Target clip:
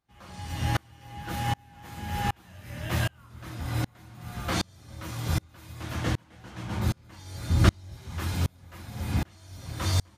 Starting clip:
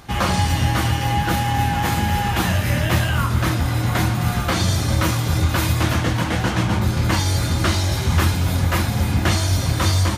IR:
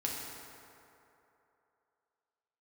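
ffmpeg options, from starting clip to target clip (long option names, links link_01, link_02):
-filter_complex "[0:a]asettb=1/sr,asplit=3[link_01][link_02][link_03];[link_01]atrim=end=7.494[link_04];[link_02]atrim=start=7.49:end=7.97,asetpts=PTS-STARTPTS,afade=type=in:duration=0.004:curve=qsin,afade=type=out:start_time=0.476:duration=0.004:curve=qsin,lowshelf=frequency=240:gain=10[link_05];[link_03]atrim=start=7.966[link_06];[link_04][link_05]acrossfade=duration=0.004:curve1=hsin:curve2=qsin[link_07];[link_07][link_06]acrossfade=duration=0.004:curve1=qsin:curve2=hsin,aeval=exprs='val(0)*pow(10,-36*if(lt(mod(-1.3*n/s,1),2*abs(-1.3)/1000),1-mod(-1.3*n/s,1)/(2*abs(-1.3)/1000),(mod(-1.3*n/s,1)-2*abs(-1.3)/1000)/(1-2*abs(-1.3)/1000))/20)':channel_layout=same,volume=-4dB"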